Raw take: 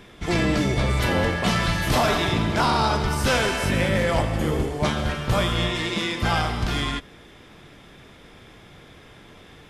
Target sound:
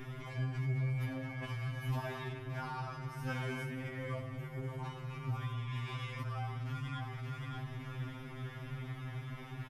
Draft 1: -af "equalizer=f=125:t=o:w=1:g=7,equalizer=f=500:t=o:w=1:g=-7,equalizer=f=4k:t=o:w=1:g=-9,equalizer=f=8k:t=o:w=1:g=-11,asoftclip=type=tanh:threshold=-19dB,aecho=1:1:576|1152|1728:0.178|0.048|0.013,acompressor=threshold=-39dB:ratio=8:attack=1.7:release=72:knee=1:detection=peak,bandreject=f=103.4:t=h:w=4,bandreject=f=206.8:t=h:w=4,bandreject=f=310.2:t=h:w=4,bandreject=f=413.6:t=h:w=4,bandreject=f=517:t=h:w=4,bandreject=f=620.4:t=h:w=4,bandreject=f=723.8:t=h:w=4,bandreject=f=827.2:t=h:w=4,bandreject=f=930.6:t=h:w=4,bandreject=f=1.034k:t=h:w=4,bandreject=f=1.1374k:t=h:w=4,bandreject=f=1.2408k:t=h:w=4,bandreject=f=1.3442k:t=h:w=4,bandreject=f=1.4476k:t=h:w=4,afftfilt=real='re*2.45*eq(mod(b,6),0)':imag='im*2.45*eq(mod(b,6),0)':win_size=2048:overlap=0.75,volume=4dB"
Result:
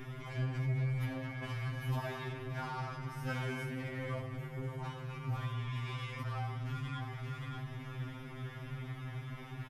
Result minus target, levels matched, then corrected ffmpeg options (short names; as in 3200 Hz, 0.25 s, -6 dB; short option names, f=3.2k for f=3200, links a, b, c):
soft clip: distortion +14 dB
-af "equalizer=f=125:t=o:w=1:g=7,equalizer=f=500:t=o:w=1:g=-7,equalizer=f=4k:t=o:w=1:g=-9,equalizer=f=8k:t=o:w=1:g=-11,asoftclip=type=tanh:threshold=-9dB,aecho=1:1:576|1152|1728:0.178|0.048|0.013,acompressor=threshold=-39dB:ratio=8:attack=1.7:release=72:knee=1:detection=peak,bandreject=f=103.4:t=h:w=4,bandreject=f=206.8:t=h:w=4,bandreject=f=310.2:t=h:w=4,bandreject=f=413.6:t=h:w=4,bandreject=f=517:t=h:w=4,bandreject=f=620.4:t=h:w=4,bandreject=f=723.8:t=h:w=4,bandreject=f=827.2:t=h:w=4,bandreject=f=930.6:t=h:w=4,bandreject=f=1.034k:t=h:w=4,bandreject=f=1.1374k:t=h:w=4,bandreject=f=1.2408k:t=h:w=4,bandreject=f=1.3442k:t=h:w=4,bandreject=f=1.4476k:t=h:w=4,afftfilt=real='re*2.45*eq(mod(b,6),0)':imag='im*2.45*eq(mod(b,6),0)':win_size=2048:overlap=0.75,volume=4dB"